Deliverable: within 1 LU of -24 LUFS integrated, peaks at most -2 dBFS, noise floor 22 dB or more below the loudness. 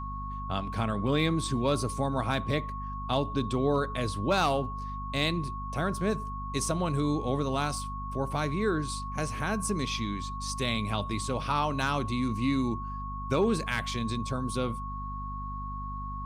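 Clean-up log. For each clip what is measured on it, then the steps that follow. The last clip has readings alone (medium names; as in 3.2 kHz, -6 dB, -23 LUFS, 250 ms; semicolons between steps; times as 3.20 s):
hum 50 Hz; highest harmonic 250 Hz; hum level -36 dBFS; steady tone 1.1 kHz; tone level -37 dBFS; loudness -30.5 LUFS; peak level -13.5 dBFS; loudness target -24.0 LUFS
-> de-hum 50 Hz, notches 5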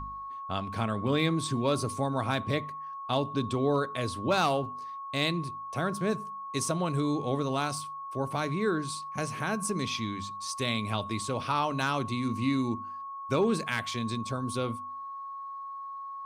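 hum not found; steady tone 1.1 kHz; tone level -37 dBFS
-> band-stop 1.1 kHz, Q 30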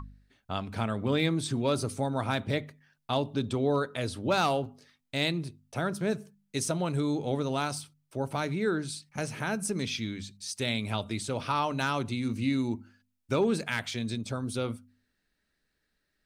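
steady tone not found; loudness -31.0 LUFS; peak level -13.5 dBFS; loudness target -24.0 LUFS
-> trim +7 dB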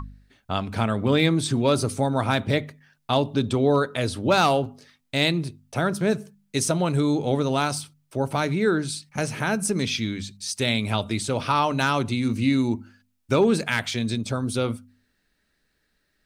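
loudness -24.0 LUFS; peak level -6.5 dBFS; noise floor -72 dBFS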